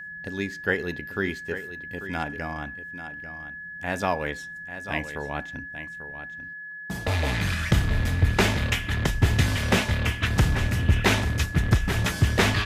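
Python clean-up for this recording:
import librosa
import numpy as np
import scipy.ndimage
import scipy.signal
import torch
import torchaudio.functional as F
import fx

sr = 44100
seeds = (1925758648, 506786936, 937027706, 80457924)

y = fx.notch(x, sr, hz=1700.0, q=30.0)
y = fx.fix_echo_inverse(y, sr, delay_ms=842, level_db=-11.5)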